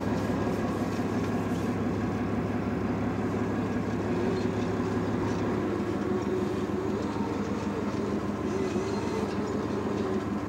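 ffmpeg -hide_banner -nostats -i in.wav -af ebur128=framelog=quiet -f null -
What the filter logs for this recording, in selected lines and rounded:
Integrated loudness:
  I:         -29.9 LUFS
  Threshold: -39.9 LUFS
Loudness range:
  LRA:         1.1 LU
  Threshold: -49.8 LUFS
  LRA low:   -30.5 LUFS
  LRA high:  -29.4 LUFS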